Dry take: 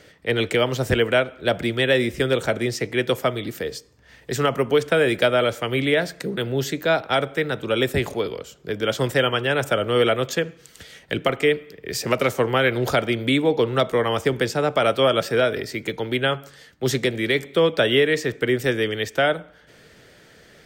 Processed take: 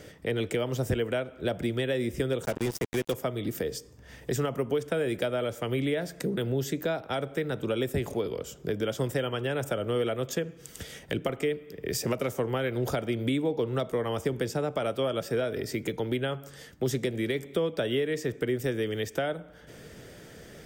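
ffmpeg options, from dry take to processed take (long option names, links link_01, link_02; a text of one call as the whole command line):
ffmpeg -i in.wav -filter_complex "[0:a]asettb=1/sr,asplit=3[link_01][link_02][link_03];[link_01]atrim=end=2.454[link_04];[link_02]atrim=start=2.45:end=3.14,asetpts=PTS-STARTPTS,afade=type=in:duration=0.004:curve=qsin,afade=type=out:start_time=0.686:duration=0.004:curve=qsin,acrusher=bits=3:mix=0:aa=0.5[link_05];[link_03]atrim=start=3.136[link_06];[link_04][link_05]acrossfade=duration=0.004:curve1=hsin:curve2=qsin[link_07];[link_07][link_06]acrossfade=duration=0.004:curve1=qsin:curve2=hsin,asettb=1/sr,asplit=3[link_08][link_09][link_10];[link_08]atrim=end=18.504[link_11];[link_09]atrim=start=18.5:end=19.07,asetpts=PTS-STARTPTS,afade=type=in:duration=0.004:curve=qsin,afade=type=out:start_time=0.566:duration=0.004:curve=qsin,aeval=exprs='val(0)*gte(abs(val(0)),0.00398)':channel_layout=same[link_12];[link_10]atrim=start=19.066[link_13];[link_11][link_12]acrossfade=duration=0.004:curve1=hsin:curve2=qsin[link_14];[link_14][link_13]acrossfade=duration=0.004:curve1=qsin:curve2=hsin,bandreject=frequency=4200:width=9.3,acompressor=threshold=-33dB:ratio=3,equalizer=frequency=2100:width=0.37:gain=-8,volume=6dB" out.wav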